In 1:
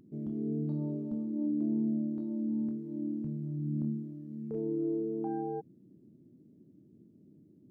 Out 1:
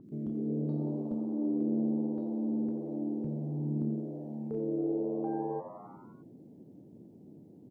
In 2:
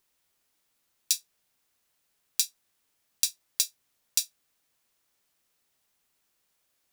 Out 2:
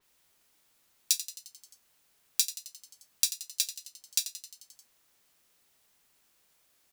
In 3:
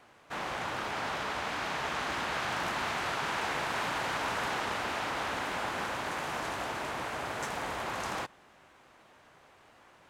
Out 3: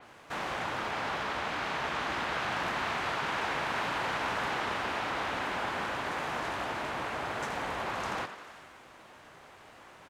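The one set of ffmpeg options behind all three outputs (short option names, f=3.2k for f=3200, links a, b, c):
-filter_complex "[0:a]asplit=8[a][b][c][d][e][f][g][h];[b]adelay=88,afreqshift=93,volume=-12dB[i];[c]adelay=176,afreqshift=186,volume=-16.3dB[j];[d]adelay=264,afreqshift=279,volume=-20.6dB[k];[e]adelay=352,afreqshift=372,volume=-24.9dB[l];[f]adelay=440,afreqshift=465,volume=-29.2dB[m];[g]adelay=528,afreqshift=558,volume=-33.5dB[n];[h]adelay=616,afreqshift=651,volume=-37.8dB[o];[a][i][j][k][l][m][n][o]amix=inputs=8:normalize=0,asplit=2[p][q];[q]acompressor=threshold=-48dB:ratio=6,volume=1dB[r];[p][r]amix=inputs=2:normalize=0,adynamicequalizer=threshold=0.00251:dfrequency=5100:dqfactor=0.7:tfrequency=5100:tqfactor=0.7:attack=5:release=100:ratio=0.375:range=3.5:mode=cutabove:tftype=highshelf,volume=-1dB"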